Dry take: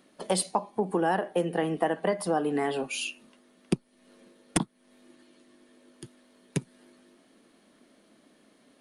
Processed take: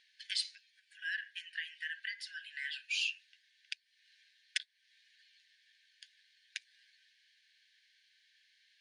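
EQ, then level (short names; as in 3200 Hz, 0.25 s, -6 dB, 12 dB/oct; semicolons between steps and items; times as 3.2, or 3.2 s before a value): brick-wall FIR high-pass 1500 Hz; ladder low-pass 6000 Hz, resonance 30%; +5.0 dB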